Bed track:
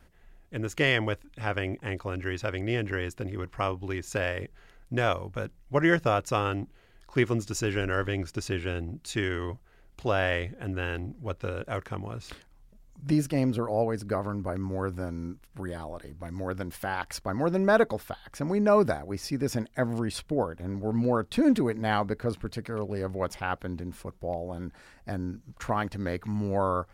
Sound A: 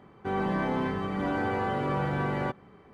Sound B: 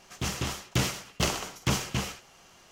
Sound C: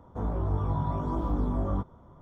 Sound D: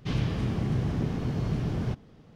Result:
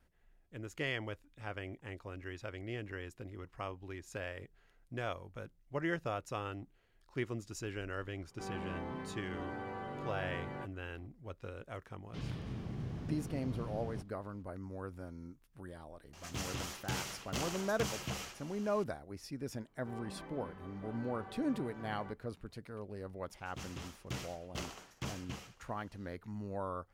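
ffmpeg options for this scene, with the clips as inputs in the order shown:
-filter_complex "[1:a]asplit=2[a][b];[2:a]asplit=2[c][d];[0:a]volume=-13dB[e];[c]acompressor=threshold=-39dB:ratio=2:attack=0.25:release=104:knee=1:detection=peak[f];[b]flanger=delay=17.5:depth=5.9:speed=1.4[g];[d]highshelf=f=5.1k:g=-4.5[h];[a]atrim=end=2.93,asetpts=PTS-STARTPTS,volume=-14dB,afade=t=in:d=0.004:c=hsin,afade=t=out:st=2.926:d=0.004:c=hsin,adelay=8140[i];[4:a]atrim=end=2.35,asetpts=PTS-STARTPTS,volume=-13.5dB,afade=t=in:d=0.004:c=hsin,afade=t=out:st=2.346:d=0.004:c=hsin,adelay=12080[j];[f]atrim=end=2.71,asetpts=PTS-STARTPTS,volume=-1dB,afade=t=in:d=0.004:c=hsin,afade=t=out:st=2.706:d=0.004:c=hsin,adelay=16130[k];[g]atrim=end=2.93,asetpts=PTS-STARTPTS,volume=-17.5dB,afade=t=in:d=0.004:c=hsin,afade=t=out:st=2.926:d=0.004:c=hsin,adelay=19600[l];[h]atrim=end=2.71,asetpts=PTS-STARTPTS,volume=-14.5dB,afade=t=in:d=0.004:c=hsin,afade=t=out:st=2.706:d=0.004:c=hsin,adelay=23350[m];[e][i][j][k][l][m]amix=inputs=6:normalize=0"

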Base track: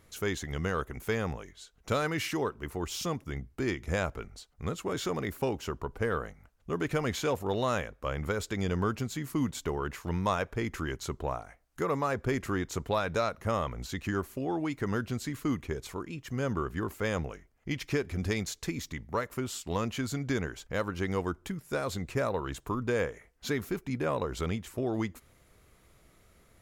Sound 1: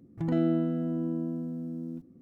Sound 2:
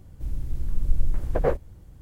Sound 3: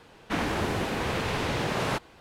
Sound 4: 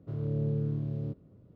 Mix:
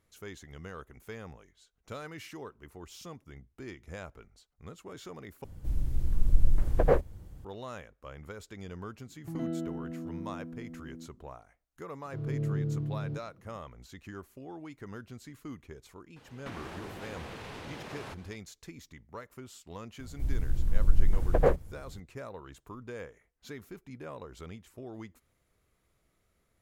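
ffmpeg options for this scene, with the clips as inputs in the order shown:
-filter_complex "[2:a]asplit=2[a][b];[0:a]volume=-12.5dB[c];[4:a]aecho=1:1:6.2:0.64[d];[3:a]acompressor=threshold=-35dB:ratio=6:attack=3.2:release=140:knee=1:detection=peak[e];[c]asplit=2[f][g];[f]atrim=end=5.444[h];[a]atrim=end=2.01,asetpts=PTS-STARTPTS,volume=-0.5dB[i];[g]atrim=start=7.446[j];[1:a]atrim=end=2.21,asetpts=PTS-STARTPTS,volume=-9dB,afade=t=in:d=0.004:c=hsin,afade=t=out:st=2.206:d=0.004:c=hsin,adelay=9070[k];[d]atrim=end=1.55,asetpts=PTS-STARTPTS,volume=-4dB,afade=t=in:d=0.004:c=hsin,afade=t=out:st=1.546:d=0.004:c=hsin,adelay=12050[l];[e]atrim=end=2.2,asetpts=PTS-STARTPTS,volume=-5dB,afade=t=in:d=0.004:c=hsin,afade=t=out:st=2.196:d=0.004:c=hsin,adelay=16160[m];[b]atrim=end=2.01,asetpts=PTS-STARTPTS,volume=-0.5dB,afade=t=in:d=0.004:c=hsin,afade=t=out:st=2.006:d=0.004:c=hsin,adelay=19990[n];[h][i]acrossfade=d=0.004:c1=hsin:c2=hsin[o];[o][j]acrossfade=d=0.004:c1=hsin:c2=hsin[p];[p][k][l][m][n]amix=inputs=5:normalize=0"

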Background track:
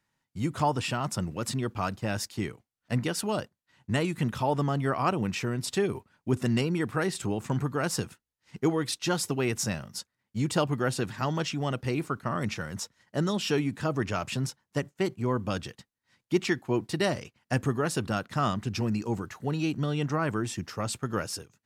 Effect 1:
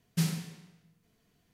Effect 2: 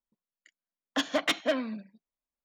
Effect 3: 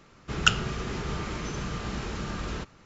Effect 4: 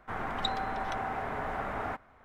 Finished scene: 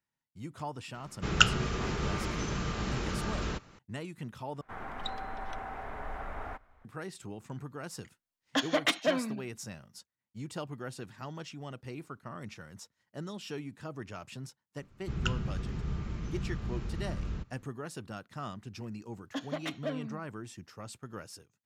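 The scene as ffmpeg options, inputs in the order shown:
-filter_complex "[3:a]asplit=2[a][b];[2:a]asplit=2[c][d];[0:a]volume=-13dB[e];[4:a]asubboost=boost=8.5:cutoff=63[f];[b]bass=f=250:g=14,treble=f=4k:g=-3[g];[d]tiltshelf=f=650:g=4.5[h];[e]asplit=2[i][j];[i]atrim=end=4.614[k];[f]atrim=end=2.24,asetpts=PTS-STARTPTS,volume=-6.5dB[l];[j]atrim=start=6.846[m];[a]atrim=end=2.85,asetpts=PTS-STARTPTS,volume=-0.5dB,afade=t=in:d=0.004:c=hsin,afade=t=out:st=2.846:d=0.004:c=hsin,adelay=940[n];[c]atrim=end=2.44,asetpts=PTS-STARTPTS,volume=-0.5dB,afade=t=in:d=0.004:c=hsin,afade=t=out:st=2.436:d=0.004:c=hsin,adelay=7590[o];[g]atrim=end=2.85,asetpts=PTS-STARTPTS,volume=-13.5dB,afade=t=in:d=0.004:c=hsin,afade=t=out:st=2.846:d=0.004:c=hsin,adelay=14790[p];[h]atrim=end=2.44,asetpts=PTS-STARTPTS,volume=-9dB,afade=t=in:d=0.004:c=hsin,afade=t=out:st=2.436:d=0.004:c=hsin,adelay=18380[q];[k][l]acrossfade=d=0.004:c1=hsin:c2=hsin[r];[r][m]acrossfade=d=0.004:c1=hsin:c2=hsin[s];[s][n][o][p][q]amix=inputs=5:normalize=0"

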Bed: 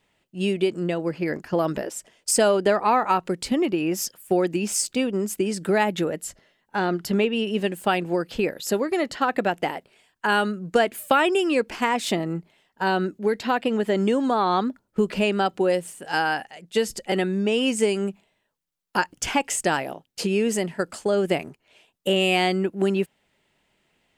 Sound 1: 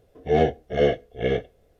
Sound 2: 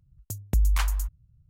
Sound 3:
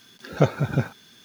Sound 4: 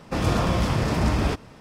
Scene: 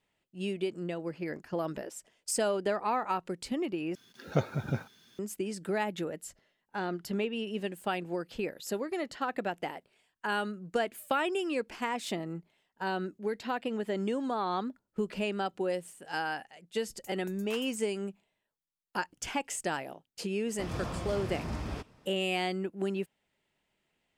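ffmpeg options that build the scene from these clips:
-filter_complex "[0:a]volume=-10.5dB[a];[2:a]highpass=410[b];[a]asplit=2[c][d];[c]atrim=end=3.954[e];[3:a]atrim=end=1.24,asetpts=PTS-STARTPTS,volume=-9dB[f];[d]atrim=start=5.186[g];[b]atrim=end=1.49,asetpts=PTS-STARTPTS,volume=-14.5dB,afade=t=in:d=0.004:c=hsin,afade=t=out:st=1.486:d=0.004:c=hsin,adelay=16740[h];[4:a]atrim=end=1.6,asetpts=PTS-STARTPTS,volume=-14.5dB,afade=t=in:d=0.004:c=hsin,afade=t=out:st=1.596:d=0.004:c=hsin,adelay=20470[i];[e][f]acrossfade=d=0.004:c1=hsin:c2=hsin[j];[j][g]acrossfade=d=0.004:c1=hsin:c2=hsin[k];[k][h][i]amix=inputs=3:normalize=0"

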